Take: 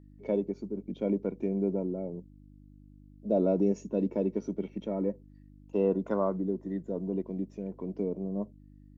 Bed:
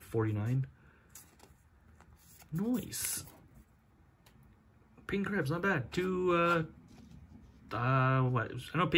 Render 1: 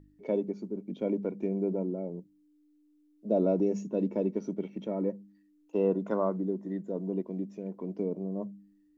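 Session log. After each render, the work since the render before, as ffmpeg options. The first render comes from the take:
ffmpeg -i in.wav -af "bandreject=frequency=50:width_type=h:width=4,bandreject=frequency=100:width_type=h:width=4,bandreject=frequency=150:width_type=h:width=4,bandreject=frequency=200:width_type=h:width=4,bandreject=frequency=250:width_type=h:width=4" out.wav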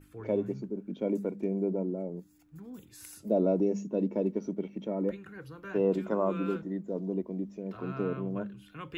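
ffmpeg -i in.wav -i bed.wav -filter_complex "[1:a]volume=-12.5dB[link_01];[0:a][link_01]amix=inputs=2:normalize=0" out.wav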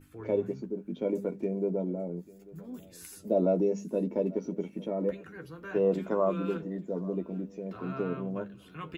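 ffmpeg -i in.wav -filter_complex "[0:a]asplit=2[link_01][link_02];[link_02]adelay=12,volume=-6.5dB[link_03];[link_01][link_03]amix=inputs=2:normalize=0,aecho=1:1:843|1686:0.0841|0.0269" out.wav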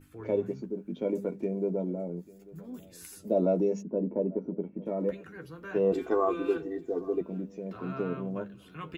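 ffmpeg -i in.wav -filter_complex "[0:a]asplit=3[link_01][link_02][link_03];[link_01]afade=type=out:start_time=3.81:duration=0.02[link_04];[link_02]lowpass=1000,afade=type=in:start_time=3.81:duration=0.02,afade=type=out:start_time=4.85:duration=0.02[link_05];[link_03]afade=type=in:start_time=4.85:duration=0.02[link_06];[link_04][link_05][link_06]amix=inputs=3:normalize=0,asettb=1/sr,asplit=3[link_07][link_08][link_09];[link_07]atrim=end=5.924[link_10];[link_08]atrim=start=5.92:end=7.21,asetpts=PTS-STARTPTS,afade=type=in:duration=0.004:curve=qsin,afade=type=out:start_time=1.286:duration=0.004:curve=qsin,aecho=1:1:2.6:0.93,atrim=end_sample=56889[link_11];[link_09]atrim=start=7.206[link_12];[link_10][link_11]acrossfade=duration=0.004:curve1=hsin:curve2=qsin[link_13];[link_13][link_12]acrossfade=duration=0.004:curve1=qsin:curve2=hsin" out.wav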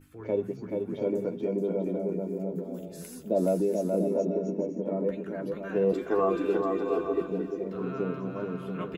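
ffmpeg -i in.wav -af "aecho=1:1:430|688|842.8|935.7|991.4:0.631|0.398|0.251|0.158|0.1" out.wav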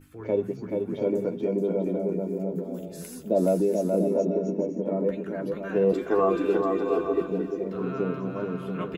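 ffmpeg -i in.wav -af "volume=3dB" out.wav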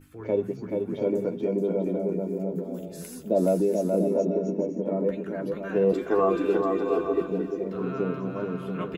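ffmpeg -i in.wav -af anull out.wav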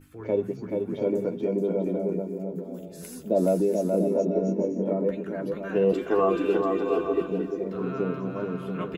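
ffmpeg -i in.wav -filter_complex "[0:a]asettb=1/sr,asplit=3[link_01][link_02][link_03];[link_01]atrim=end=4.334[link_04];[link_02]atrim=start=4.33:end=4.93,asetpts=PTS-STARTPTS,afade=type=in:duration=0.004:curve=qsin,afade=type=out:start_time=0.596:duration=0.004:curve=qsin,asplit=2[link_05][link_06];[link_06]adelay=21,volume=-3dB[link_07];[link_05][link_07]amix=inputs=2:normalize=0,atrim=end_sample=26460[link_08];[link_03]atrim=start=4.926[link_09];[link_04][link_08]acrossfade=duration=0.004:curve1=hsin:curve2=qsin[link_10];[link_10][link_09]acrossfade=duration=0.004:curve1=qsin:curve2=hsin,asettb=1/sr,asplit=3[link_11][link_12][link_13];[link_11]atrim=end=5.754[link_14];[link_12]atrim=start=5.75:end=7.45,asetpts=PTS-STARTPTS,afade=type=in:duration=0.004:curve=qsin,afade=type=out:start_time=1.696:duration=0.004:curve=qsin,equalizer=frequency=2900:width=6.5:gain=10[link_15];[link_13]atrim=start=7.446[link_16];[link_14][link_15]acrossfade=duration=0.004:curve1=hsin:curve2=qsin[link_17];[link_17][link_16]acrossfade=duration=0.004:curve1=qsin:curve2=hsin,asplit=3[link_18][link_19][link_20];[link_18]atrim=end=2.222[link_21];[link_19]atrim=start=2.218:end=3.032,asetpts=PTS-STARTPTS,volume=-3dB[link_22];[link_20]atrim=start=3.028[link_23];[link_21][link_22]acrossfade=duration=0.004:curve1=hsin:curve2=hsin[link_24];[link_24][link_23]acrossfade=duration=0.004:curve1=hsin:curve2=hsin" out.wav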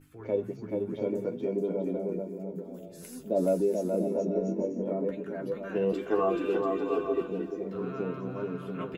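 ffmpeg -i in.wav -af "flanger=delay=6.8:depth=3.1:regen=62:speed=0.58:shape=triangular" out.wav

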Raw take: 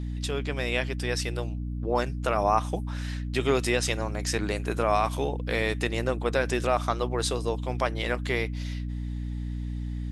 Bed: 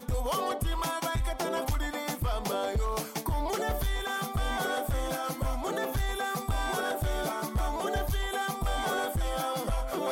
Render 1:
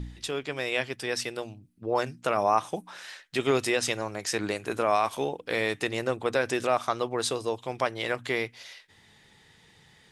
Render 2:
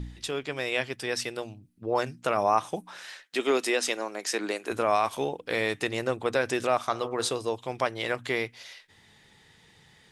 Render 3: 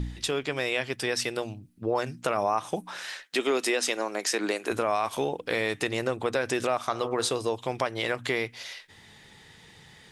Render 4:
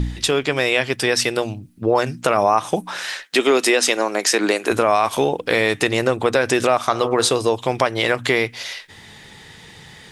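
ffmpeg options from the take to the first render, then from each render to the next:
ffmpeg -i in.wav -af "bandreject=frequency=60:width_type=h:width=4,bandreject=frequency=120:width_type=h:width=4,bandreject=frequency=180:width_type=h:width=4,bandreject=frequency=240:width_type=h:width=4,bandreject=frequency=300:width_type=h:width=4" out.wav
ffmpeg -i in.wav -filter_complex "[0:a]asettb=1/sr,asplit=3[link_01][link_02][link_03];[link_01]atrim=end=3.244[link_04];[link_02]atrim=start=3.24:end=4.71,asetpts=PTS-STARTPTS,afade=type=in:duration=0.004:curve=qsin,afade=type=out:start_time=1.466:duration=0.004:curve=qsin,highpass=frequency=240:width=0.5412,highpass=frequency=240:width=1.3066[link_05];[link_03]atrim=start=4.706[link_06];[link_04][link_05]acrossfade=duration=0.004:curve1=hsin:curve2=qsin[link_07];[link_07][link_06]acrossfade=duration=0.004:curve1=qsin:curve2=hsin,asettb=1/sr,asplit=3[link_08][link_09][link_10];[link_08]atrim=end=6.814[link_11];[link_09]atrim=start=6.81:end=7.31,asetpts=PTS-STARTPTS,afade=type=in:duration=0.004:curve=qsin,afade=type=out:start_time=0.496:duration=0.004:curve=qsin,bandreject=frequency=60.89:width_type=h:width=4,bandreject=frequency=121.78:width_type=h:width=4,bandreject=frequency=182.67:width_type=h:width=4,bandreject=frequency=243.56:width_type=h:width=4,bandreject=frequency=304.45:width_type=h:width=4,bandreject=frequency=365.34:width_type=h:width=4,bandreject=frequency=426.23:width_type=h:width=4,bandreject=frequency=487.12:width_type=h:width=4,bandreject=frequency=548.01:width_type=h:width=4,bandreject=frequency=608.9:width_type=h:width=4,bandreject=frequency=669.79:width_type=h:width=4,bandreject=frequency=730.68:width_type=h:width=4,bandreject=frequency=791.57:width_type=h:width=4,bandreject=frequency=852.46:width_type=h:width=4,bandreject=frequency=913.35:width_type=h:width=4,bandreject=frequency=974.24:width_type=h:width=4,bandreject=frequency=1035.13:width_type=h:width=4,bandreject=frequency=1096.02:width_type=h:width=4,bandreject=frequency=1156.91:width_type=h:width=4,bandreject=frequency=1217.8:width_type=h:width=4,bandreject=frequency=1278.69:width_type=h:width=4,bandreject=frequency=1339.58:width_type=h:width=4,bandreject=frequency=1400.47:width_type=h:width=4,bandreject=frequency=1461.36:width_type=h:width=4,bandreject=frequency=1522.25:width_type=h:width=4,bandreject=frequency=1583.14:width_type=h:width=4,bandreject=frequency=1644.03:width_type=h:width=4,bandreject=frequency=1704.92:width_type=h:width=4,bandreject=frequency=1765.81:width_type=h:width=4,bandreject=frequency=1826.7:width_type=h:width=4,bandreject=frequency=1887.59:width_type=h:width=4,bandreject=frequency=1948.48:width_type=h:width=4[link_12];[link_10]atrim=start=7.306[link_13];[link_11][link_12]acrossfade=duration=0.004:curve1=hsin:curve2=qsin[link_14];[link_14][link_13]acrossfade=duration=0.004:curve1=qsin:curve2=hsin" out.wav
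ffmpeg -i in.wav -filter_complex "[0:a]asplit=2[link_01][link_02];[link_02]alimiter=limit=-21dB:level=0:latency=1:release=120,volume=-1dB[link_03];[link_01][link_03]amix=inputs=2:normalize=0,acompressor=threshold=-25dB:ratio=2" out.wav
ffmpeg -i in.wav -af "volume=10dB,alimiter=limit=-2dB:level=0:latency=1" out.wav

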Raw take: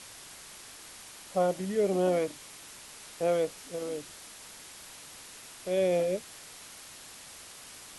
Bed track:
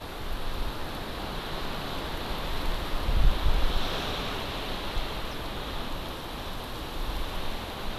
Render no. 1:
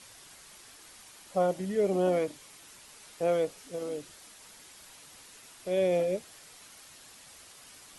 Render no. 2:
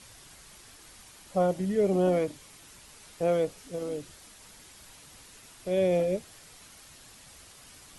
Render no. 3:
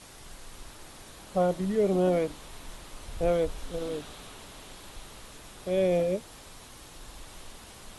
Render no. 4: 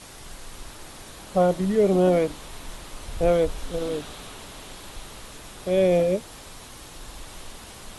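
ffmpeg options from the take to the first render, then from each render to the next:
ffmpeg -i in.wav -af "afftdn=noise_reduction=6:noise_floor=-49" out.wav
ffmpeg -i in.wav -af "lowshelf=frequency=170:gain=11.5" out.wav
ffmpeg -i in.wav -i bed.wav -filter_complex "[1:a]volume=-15dB[link_01];[0:a][link_01]amix=inputs=2:normalize=0" out.wav
ffmpeg -i in.wav -af "volume=5.5dB" out.wav

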